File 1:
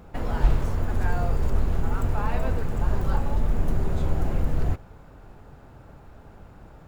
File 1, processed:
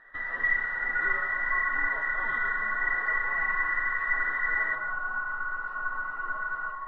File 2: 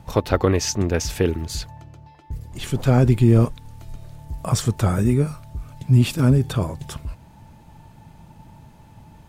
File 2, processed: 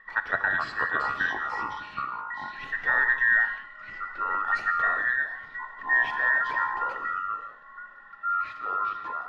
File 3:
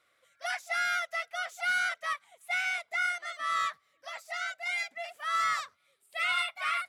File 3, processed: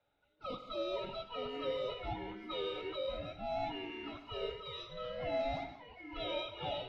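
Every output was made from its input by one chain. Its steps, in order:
every band turned upside down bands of 2 kHz; treble shelf 12 kHz -6.5 dB; ever faster or slower copies 369 ms, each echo -5 st, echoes 2, each echo -6 dB; distance through air 330 m; gated-style reverb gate 210 ms flat, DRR 8.5 dB; trim -6 dB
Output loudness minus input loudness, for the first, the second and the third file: 0.0 LU, -6.0 LU, -9.0 LU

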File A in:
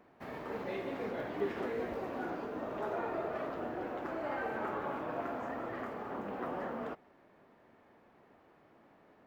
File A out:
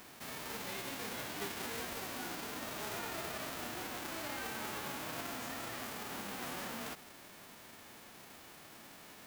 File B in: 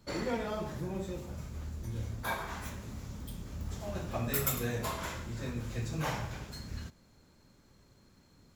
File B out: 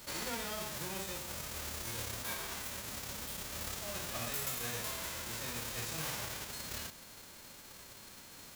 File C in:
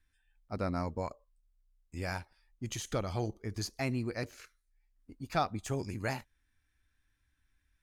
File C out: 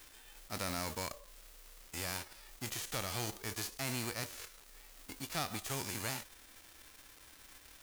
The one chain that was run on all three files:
formants flattened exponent 0.3; crackle 220 per s -59 dBFS; level flattener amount 50%; trim -8 dB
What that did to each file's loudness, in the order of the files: -2.0 LU, -1.5 LU, -2.5 LU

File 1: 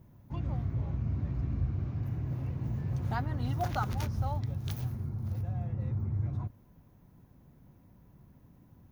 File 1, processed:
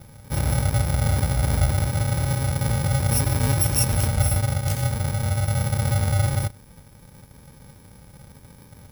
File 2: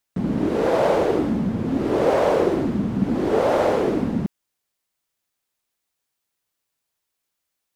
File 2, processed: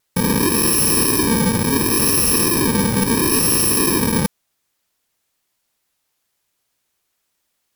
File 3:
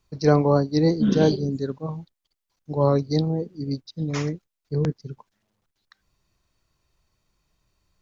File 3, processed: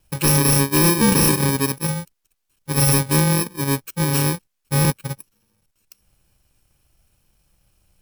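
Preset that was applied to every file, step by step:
bit-reversed sample order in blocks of 64 samples; vibrato 0.6 Hz 7 cents; sine folder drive 12 dB, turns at -3.5 dBFS; peak normalisation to -9 dBFS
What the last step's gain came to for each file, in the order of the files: -4.5 dB, -7.5 dB, -7.5 dB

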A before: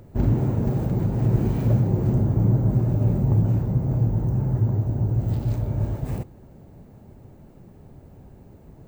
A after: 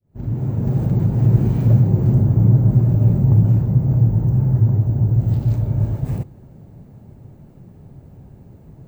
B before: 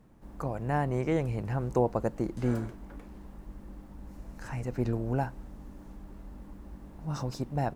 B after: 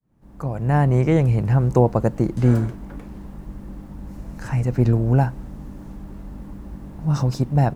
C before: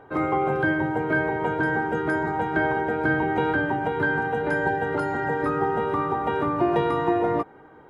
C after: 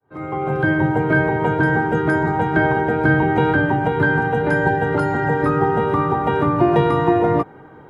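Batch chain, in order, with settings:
fade-in on the opening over 0.84 s; peaking EQ 130 Hz +7.5 dB 1.4 oct; peak normalisation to -3 dBFS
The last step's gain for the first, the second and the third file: 0.0 dB, +8.0 dB, +5.0 dB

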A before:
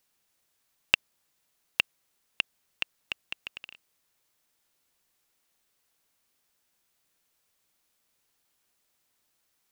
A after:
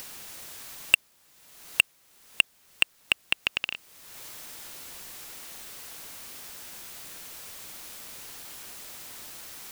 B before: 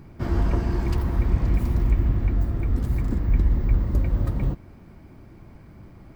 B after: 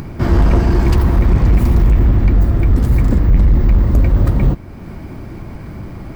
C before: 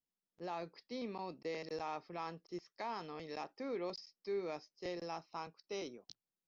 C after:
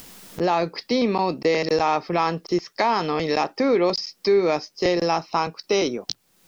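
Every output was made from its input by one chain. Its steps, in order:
in parallel at -1 dB: upward compressor, threshold -28 dBFS; on the sum: overload inside the chain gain 12.5 dB; peak normalisation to -6 dBFS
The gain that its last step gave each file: +6.5 dB, +6.5 dB, +13.0 dB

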